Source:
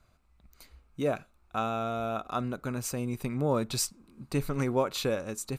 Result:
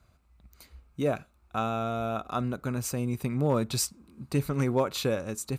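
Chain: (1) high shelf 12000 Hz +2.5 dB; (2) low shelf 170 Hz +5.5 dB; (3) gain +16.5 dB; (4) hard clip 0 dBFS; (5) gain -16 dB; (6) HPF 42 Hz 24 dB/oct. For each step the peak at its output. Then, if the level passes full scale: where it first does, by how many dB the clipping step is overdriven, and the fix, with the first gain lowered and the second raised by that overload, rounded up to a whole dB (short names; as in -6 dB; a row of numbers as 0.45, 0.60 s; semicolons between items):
-14.5, -13.5, +3.0, 0.0, -16.0, -14.5 dBFS; step 3, 3.0 dB; step 3 +13.5 dB, step 5 -13 dB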